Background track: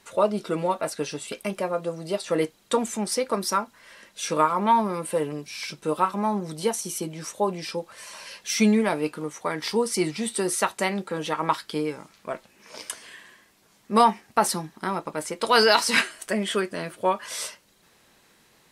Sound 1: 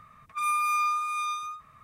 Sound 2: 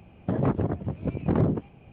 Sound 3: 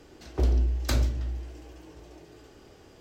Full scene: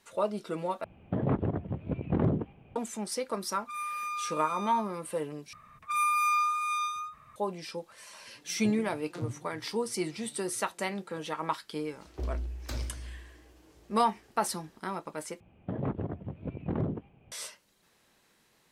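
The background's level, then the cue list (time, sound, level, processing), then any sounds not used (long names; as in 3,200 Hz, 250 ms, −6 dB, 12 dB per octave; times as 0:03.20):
background track −8 dB
0:00.84: overwrite with 2 −4 dB
0:03.32: mix in 1 −9.5 dB
0:05.53: overwrite with 1 −0.5 dB
0:08.25: mix in 3 −5.5 dB + vocoder with an arpeggio as carrier major triad, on A#2, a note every 105 ms
0:11.80: mix in 3 −11 dB
0:15.40: overwrite with 2 −8.5 dB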